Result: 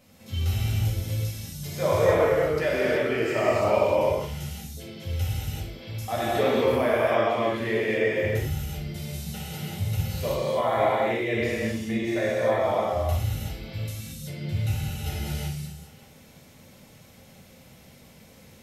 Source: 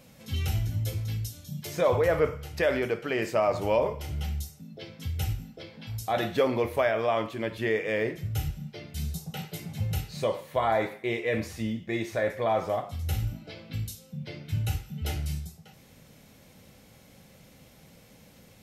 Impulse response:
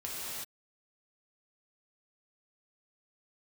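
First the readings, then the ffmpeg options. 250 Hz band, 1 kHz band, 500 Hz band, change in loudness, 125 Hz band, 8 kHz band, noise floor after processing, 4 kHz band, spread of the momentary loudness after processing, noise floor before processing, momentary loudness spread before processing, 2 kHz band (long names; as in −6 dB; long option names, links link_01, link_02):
+4.0 dB, +3.5 dB, +4.0 dB, +3.5 dB, +3.5 dB, +3.5 dB, −52 dBFS, +3.5 dB, 13 LU, −55 dBFS, 13 LU, +3.5 dB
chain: -filter_complex "[1:a]atrim=start_sample=2205[link_01];[0:a][link_01]afir=irnorm=-1:irlink=0"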